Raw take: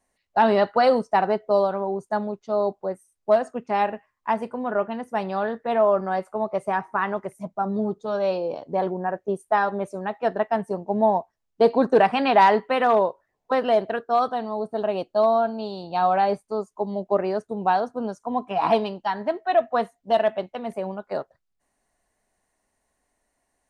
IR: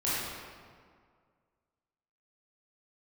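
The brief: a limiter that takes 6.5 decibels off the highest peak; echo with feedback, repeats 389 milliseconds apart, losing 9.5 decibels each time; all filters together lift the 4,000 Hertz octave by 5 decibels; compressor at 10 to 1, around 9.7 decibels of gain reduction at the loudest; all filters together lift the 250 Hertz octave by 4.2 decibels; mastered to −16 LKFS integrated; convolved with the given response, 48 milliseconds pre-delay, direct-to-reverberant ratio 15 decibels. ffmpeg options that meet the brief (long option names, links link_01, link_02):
-filter_complex "[0:a]equalizer=frequency=250:width_type=o:gain=5,equalizer=frequency=4000:width_type=o:gain=6.5,acompressor=threshold=-21dB:ratio=10,alimiter=limit=-18dB:level=0:latency=1,aecho=1:1:389|778|1167|1556:0.335|0.111|0.0365|0.012,asplit=2[link_01][link_02];[1:a]atrim=start_sample=2205,adelay=48[link_03];[link_02][link_03]afir=irnorm=-1:irlink=0,volume=-24.5dB[link_04];[link_01][link_04]amix=inputs=2:normalize=0,volume=12.5dB"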